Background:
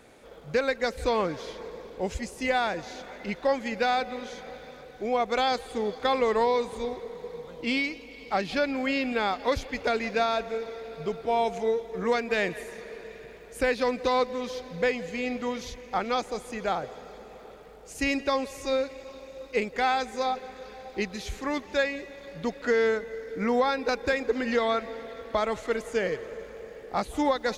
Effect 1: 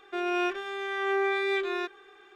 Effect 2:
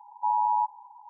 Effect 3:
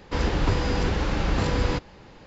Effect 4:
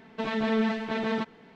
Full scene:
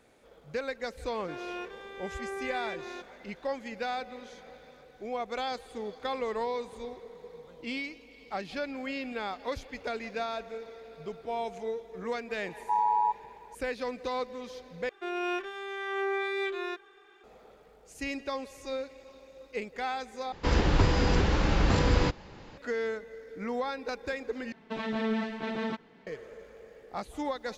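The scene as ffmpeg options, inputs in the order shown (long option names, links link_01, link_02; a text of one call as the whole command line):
ffmpeg -i bed.wav -i cue0.wav -i cue1.wav -i cue2.wav -i cue3.wav -filter_complex "[1:a]asplit=2[link_01][link_02];[0:a]volume=-8.5dB,asplit=4[link_03][link_04][link_05][link_06];[link_03]atrim=end=14.894[link_07];[link_02]atrim=end=2.35,asetpts=PTS-STARTPTS,volume=-4dB[link_08];[link_04]atrim=start=17.236:end=20.324[link_09];[3:a]atrim=end=2.26,asetpts=PTS-STARTPTS,volume=-0.5dB[link_10];[link_05]atrim=start=22.576:end=24.524[link_11];[4:a]atrim=end=1.55,asetpts=PTS-STARTPTS,volume=-4.5dB[link_12];[link_06]atrim=start=26.066[link_13];[link_01]atrim=end=2.35,asetpts=PTS-STARTPTS,volume=-11dB,afade=type=in:duration=0.004:curve=hsin,afade=type=out:start_time=2.346:duration=0.004:curve=hsin,adelay=1150[link_14];[2:a]atrim=end=1.09,asetpts=PTS-STARTPTS,volume=-1.5dB,afade=type=in:duration=0.004:curve=hsin,afade=type=out:start_time=1.086:duration=0.004:curve=hsin,adelay=12460[link_15];[link_07][link_08]acrossfade=duration=0.004:curve1=hsin:curve2=hsin[link_16];[link_16][link_09]acrossfade=duration=0.004:curve1=hsin:curve2=hsin[link_17];[link_17][link_10]acrossfade=duration=0.004:curve1=hsin:curve2=hsin[link_18];[link_18][link_11]acrossfade=duration=0.004:curve1=hsin:curve2=hsin[link_19];[link_19][link_12]acrossfade=duration=0.004:curve1=hsin:curve2=hsin[link_20];[link_20][link_13]acrossfade=duration=0.004:curve1=hsin:curve2=hsin[link_21];[link_21][link_14][link_15]amix=inputs=3:normalize=0" out.wav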